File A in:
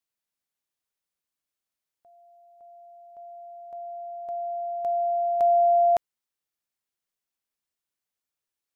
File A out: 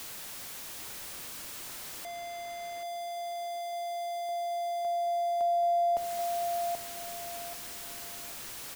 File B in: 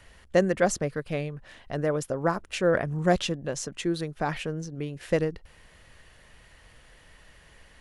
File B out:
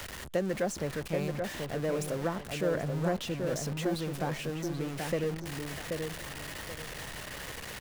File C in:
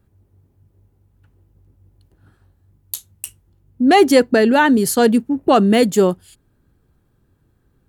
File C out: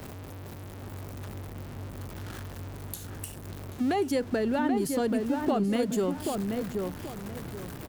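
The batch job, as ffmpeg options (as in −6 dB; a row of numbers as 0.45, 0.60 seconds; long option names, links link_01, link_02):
-filter_complex "[0:a]aeval=exprs='val(0)+0.5*0.0447*sgn(val(0))':channel_layout=same,acrossover=split=83|740[link_01][link_02][link_03];[link_01]acompressor=threshold=-46dB:ratio=4[link_04];[link_02]acompressor=threshold=-19dB:ratio=4[link_05];[link_03]acompressor=threshold=-30dB:ratio=4[link_06];[link_04][link_05][link_06]amix=inputs=3:normalize=0,asplit=2[link_07][link_08];[link_08]adelay=782,lowpass=frequency=1900:poles=1,volume=-4dB,asplit=2[link_09][link_10];[link_10]adelay=782,lowpass=frequency=1900:poles=1,volume=0.29,asplit=2[link_11][link_12];[link_12]adelay=782,lowpass=frequency=1900:poles=1,volume=0.29,asplit=2[link_13][link_14];[link_14]adelay=782,lowpass=frequency=1900:poles=1,volume=0.29[link_15];[link_07][link_09][link_11][link_13][link_15]amix=inputs=5:normalize=0,volume=-7.5dB"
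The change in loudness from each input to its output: −10.0, −6.0, −17.0 LU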